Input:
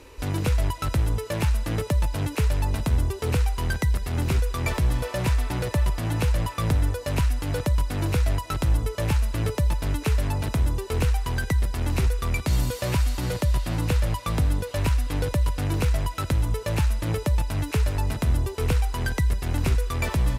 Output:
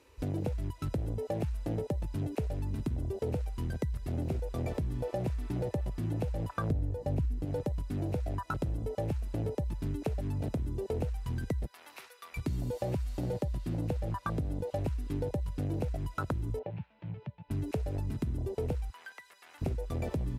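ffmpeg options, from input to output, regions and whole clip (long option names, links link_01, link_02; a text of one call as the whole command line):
ffmpeg -i in.wav -filter_complex "[0:a]asettb=1/sr,asplit=3[link_01][link_02][link_03];[link_01]atrim=end=6.704[link_04];[link_02]atrim=start=6.7:end=7.45,asetpts=PTS-STARTPTS,afade=type=in:duration=0.004:curve=qsin,afade=type=out:start_time=0.746:duration=0.004:curve=qsin,lowshelf=frequency=280:gain=10.5,aeval=exprs='val(0)+0.0126*(sin(2*PI*60*n/s)+sin(2*PI*2*60*n/s)/2+sin(2*PI*3*60*n/s)/3+sin(2*PI*4*60*n/s)/4+sin(2*PI*5*60*n/s)/5)':channel_layout=same[link_05];[link_03]atrim=start=7.446[link_06];[link_04][link_05]acrossfade=duration=0.004:curve1=hsin:curve2=qsin[link_07];[link_07][link_06]acrossfade=duration=0.004:curve1=qsin:curve2=hsin,asettb=1/sr,asplit=3[link_08][link_09][link_10];[link_08]atrim=end=11.664[link_11];[link_09]atrim=start=11.66:end=12.37,asetpts=PTS-STARTPTS,afade=type=in:duration=0.004:curve=qsin,afade=type=out:start_time=0.706:duration=0.004:curve=qsin,highpass=790,equalizer=frequency=7500:width=1.4:gain=-6[link_12];[link_10]atrim=start=12.366[link_13];[link_11][link_12]acrossfade=duration=0.004:curve1=hsin:curve2=qsin[link_14];[link_14][link_13]acrossfade=duration=0.004:curve1=qsin:curve2=hsin,asettb=1/sr,asplit=3[link_15][link_16][link_17];[link_15]atrim=end=16.594[link_18];[link_16]atrim=start=16.59:end=17.51,asetpts=PTS-STARTPTS,afade=type=in:duration=0.004:curve=qsin,afade=type=out:start_time=0.916:duration=0.004:curve=qsin,acompressor=threshold=-30dB:ratio=5:attack=3.2:release=140:knee=1:detection=peak,highpass=frequency=110:width=0.5412,highpass=frequency=110:width=1.3066,equalizer=frequency=260:width_type=q:width=4:gain=-4,equalizer=frequency=510:width_type=q:width=4:gain=-3,equalizer=frequency=850:width_type=q:width=4:gain=3,equalizer=frequency=1200:width_type=q:width=4:gain=-8,equalizer=frequency=1800:width_type=q:width=4:gain=-4,lowpass=frequency=2900:width=0.5412,lowpass=frequency=2900:width=1.3066[link_19];[link_17]atrim=start=17.506[link_20];[link_18][link_19]acrossfade=duration=0.004:curve1=hsin:curve2=qsin[link_21];[link_21][link_20]acrossfade=duration=0.004:curve1=qsin:curve2=hsin,asettb=1/sr,asplit=3[link_22][link_23][link_24];[link_22]atrim=end=18.904[link_25];[link_23]atrim=start=18.9:end=19.62,asetpts=PTS-STARTPTS,afade=type=in:duration=0.004:curve=qsin,afade=type=out:start_time=0.716:duration=0.004:curve=qsin,highpass=1000,acrossover=split=3100[link_26][link_27];[link_27]acompressor=threshold=-47dB:ratio=4:attack=1:release=60[link_28];[link_26][link_28]amix=inputs=2:normalize=0,acrusher=bits=9:mode=log:mix=0:aa=0.000001[link_29];[link_24]atrim=start=19.616[link_30];[link_25][link_29]acrossfade=duration=0.004:curve1=hsin:curve2=qsin[link_31];[link_31][link_30]acrossfade=duration=0.004:curve1=qsin:curve2=hsin,afwtdn=0.0501,highpass=frequency=150:poles=1,acompressor=threshold=-34dB:ratio=4,volume=3dB" out.wav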